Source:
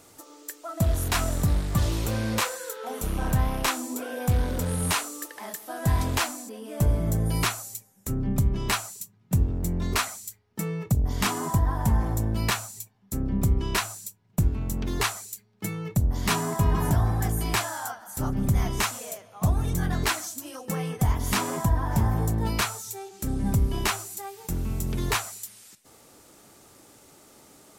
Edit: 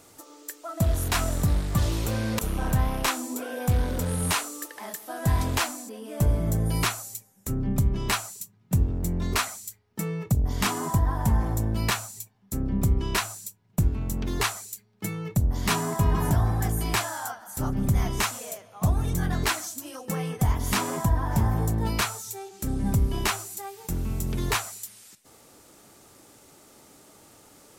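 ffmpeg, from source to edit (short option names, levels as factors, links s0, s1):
-filter_complex "[0:a]asplit=2[s0][s1];[s0]atrim=end=2.392[s2];[s1]atrim=start=2.988[s3];[s2][s3]acrossfade=d=0.004:c1=hsin:c2=hsin"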